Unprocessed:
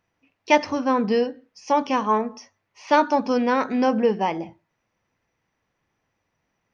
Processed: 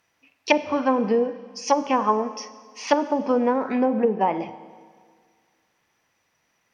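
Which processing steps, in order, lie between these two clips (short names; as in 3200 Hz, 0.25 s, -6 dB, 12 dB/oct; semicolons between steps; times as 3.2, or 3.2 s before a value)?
treble ducked by the level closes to 410 Hz, closed at -15 dBFS; tilt +2.5 dB/oct; Schroeder reverb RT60 1.9 s, combs from 31 ms, DRR 14 dB; gain +4.5 dB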